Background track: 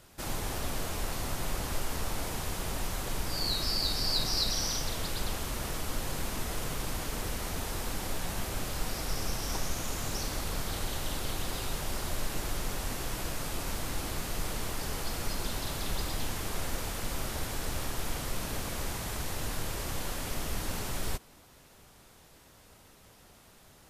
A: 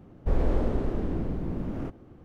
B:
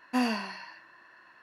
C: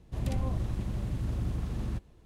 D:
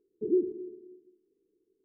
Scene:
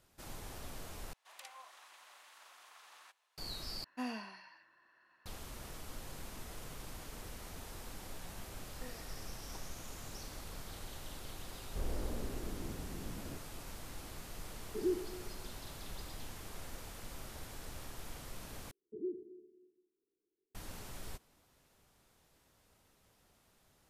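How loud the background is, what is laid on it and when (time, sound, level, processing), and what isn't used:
background track -13 dB
1.13 replace with C -4.5 dB + HPF 920 Hz 24 dB/oct
3.84 replace with B -13 dB
8.67 add B -11.5 dB + vocal tract filter e
11.49 add A -14.5 dB
14.53 add D -8 dB
18.71 replace with D -14 dB

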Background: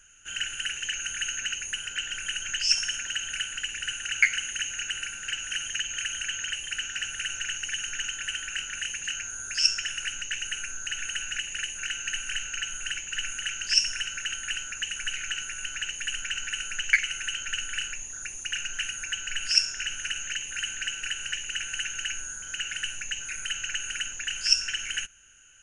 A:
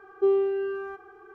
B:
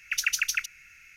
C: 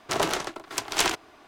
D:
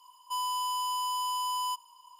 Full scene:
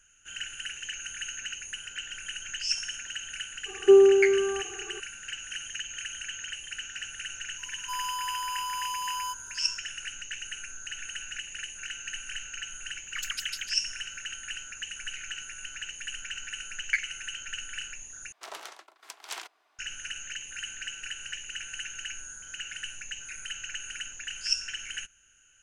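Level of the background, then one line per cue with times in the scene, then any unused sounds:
background -6 dB
3.66 add A + low shelf 500 Hz +10.5 dB
7.58 add D -2 dB
13.04 add B -9 dB + shaped vibrato square 5.6 Hz, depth 250 cents
18.32 replace with C -14.5 dB + HPF 710 Hz

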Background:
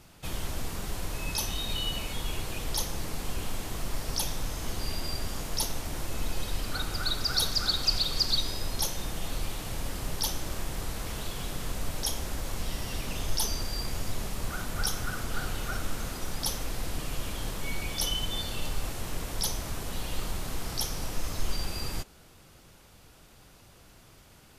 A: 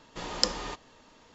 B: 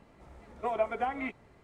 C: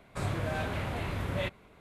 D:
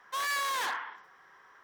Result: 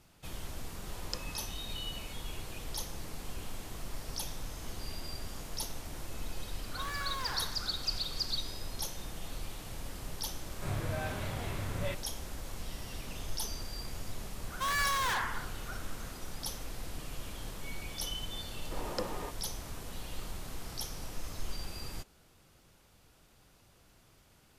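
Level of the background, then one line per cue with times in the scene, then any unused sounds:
background -8 dB
0.7 add A -14.5 dB
6.65 add D -7.5 dB + tilt -1.5 dB/oct
10.46 add C -9.5 dB + harmonic-percussive split harmonic +7 dB
14.48 add D
18.55 add A -1 dB + band-pass 480 Hz, Q 0.61
not used: B

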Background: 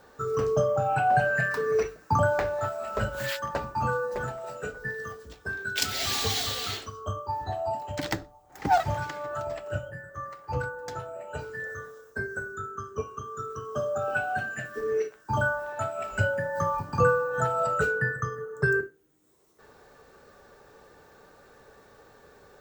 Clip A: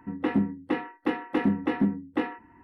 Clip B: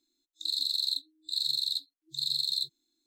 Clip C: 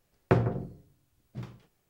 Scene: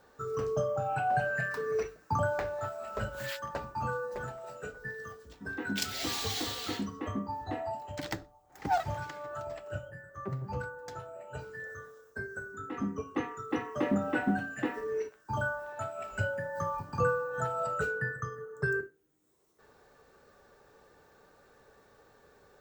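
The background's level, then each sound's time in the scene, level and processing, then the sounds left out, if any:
background -6.5 dB
5.34 add A -12 dB
9.94 add C -11.5 dB + arpeggiated vocoder bare fifth, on C3, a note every 0.165 s
12.46 add A -5.5 dB + opening faded in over 0.63 s
not used: B

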